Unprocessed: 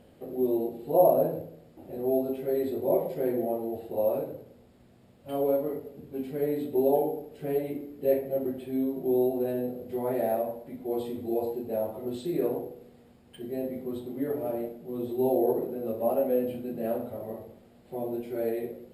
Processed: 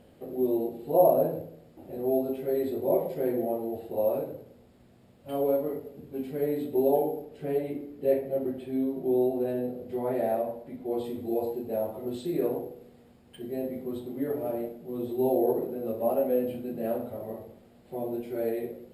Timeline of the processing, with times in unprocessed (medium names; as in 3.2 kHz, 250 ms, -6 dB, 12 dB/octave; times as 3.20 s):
7.24–11.04 s: treble shelf 10 kHz -9.5 dB